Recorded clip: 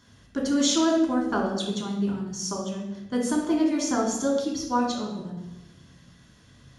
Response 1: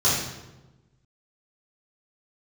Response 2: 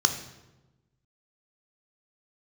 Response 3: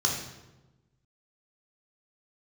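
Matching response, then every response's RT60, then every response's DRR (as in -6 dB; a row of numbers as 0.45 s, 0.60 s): 3; 1.1 s, 1.1 s, 1.1 s; -11.0 dB, 6.5 dB, -1.5 dB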